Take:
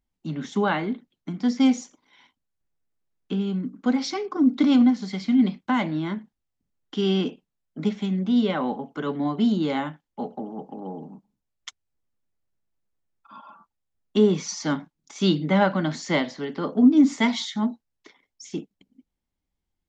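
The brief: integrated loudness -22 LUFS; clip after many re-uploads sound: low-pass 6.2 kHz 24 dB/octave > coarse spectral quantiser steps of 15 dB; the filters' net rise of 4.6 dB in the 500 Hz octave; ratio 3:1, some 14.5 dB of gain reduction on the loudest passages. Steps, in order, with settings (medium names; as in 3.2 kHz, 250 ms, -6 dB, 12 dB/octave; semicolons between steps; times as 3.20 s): peaking EQ 500 Hz +6 dB; compression 3:1, threshold -30 dBFS; low-pass 6.2 kHz 24 dB/octave; coarse spectral quantiser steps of 15 dB; trim +10.5 dB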